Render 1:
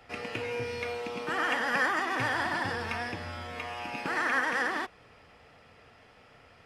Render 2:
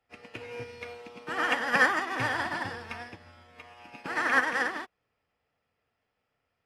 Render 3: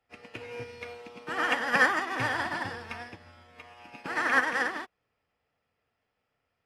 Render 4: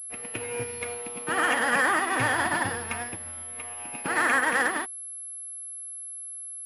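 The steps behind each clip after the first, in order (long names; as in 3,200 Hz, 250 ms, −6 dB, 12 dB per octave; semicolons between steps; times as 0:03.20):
expander for the loud parts 2.5 to 1, over −45 dBFS; level +7 dB
no processing that can be heard
brickwall limiter −20.5 dBFS, peak gain reduction 11.5 dB; switching amplifier with a slow clock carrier 11,000 Hz; level +6.5 dB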